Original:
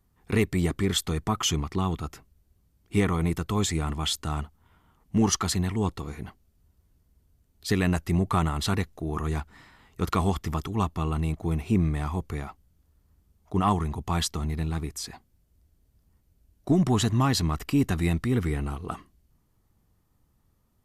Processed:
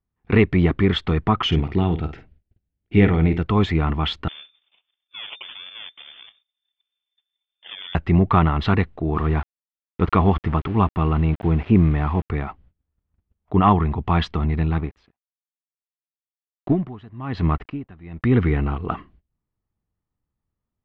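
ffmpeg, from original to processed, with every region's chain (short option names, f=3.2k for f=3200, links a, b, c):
-filter_complex "[0:a]asettb=1/sr,asplit=3[a][b][c];[a]atrim=end=1.474[d];[b]atrim=start=1.47:end=3.43,asetpts=PTS-STARTPTS,afade=t=in:d=0.004:c=qsin,afade=t=out:st=1.956:d=0.004:c=qsin,equalizer=f=1.1k:w=3.4:g=-14,asplit=2[e][f];[f]adelay=50,volume=-10dB[g];[e][g]amix=inputs=2:normalize=0,atrim=end_sample=86436[h];[c]atrim=start=3.426[i];[d][h]acrossfade=d=0.004:c1=hsin:c2=qsin[j];[j][i]acrossfade=d=0.004:c1=qsin:c2=hsin,asettb=1/sr,asplit=3[k][l][m];[k]atrim=end=4.284[n];[l]atrim=start=4.28:end=7.95,asetpts=PTS-STARTPTS,afade=t=in:d=0.004:c=qsin,afade=t=out:st=3.666:d=0.004:c=qsin,acompressor=threshold=-51dB:ratio=2:attack=3.2:release=140:knee=1:detection=peak,acrusher=samples=32:mix=1:aa=0.000001:lfo=1:lforange=19.2:lforate=1.6,lowpass=f=3.1k:t=q:w=0.5098,lowpass=f=3.1k:t=q:w=0.6013,lowpass=f=3.1k:t=q:w=0.9,lowpass=f=3.1k:t=q:w=2.563,afreqshift=-3600[o];[m]atrim=start=7.946[p];[n][o]acrossfade=d=0.004:c1=hsin:c2=qsin[q];[q][p]acrossfade=d=0.004:c1=qsin:c2=hsin,asettb=1/sr,asplit=3[r][s][t];[r]atrim=end=9.154[u];[s]atrim=start=9.15:end=12.3,asetpts=PTS-STARTPTS,afade=t=in:d=0.004:c=qsin,afade=t=out:st=3.146:d=0.004:c=qsin,highshelf=f=4.6k:g=-8,aeval=exprs='val(0)*gte(abs(val(0)),0.00944)':c=same[v];[t]atrim=start=12.296[w];[u][v]acrossfade=d=0.004:c1=hsin:c2=qsin[x];[x][w]acrossfade=d=0.004:c1=qsin:c2=hsin,asettb=1/sr,asplit=3[y][z][aa];[y]atrim=end=14.784[ab];[z]atrim=start=14.78:end=18.24,asetpts=PTS-STARTPTS,afade=t=in:d=0.004:c=qsin,afade=t=out:st=3.456:d=0.004:c=qsin,lowpass=f=3.4k:p=1,aeval=exprs='sgn(val(0))*max(abs(val(0))-0.00398,0)':c=same,aeval=exprs='val(0)*pow(10,-25*(0.5-0.5*cos(2*PI*1.1*n/s))/20)':c=same[ac];[aa]atrim=start=18.236[ad];[ab][ac]acrossfade=d=0.004:c1=hsin:c2=qsin[ae];[ae][ad]acrossfade=d=0.004:c1=qsin:c2=hsin,agate=range=-22dB:threshold=-58dB:ratio=16:detection=peak,lowpass=f=3k:w=0.5412,lowpass=f=3k:w=1.3066,volume=8dB"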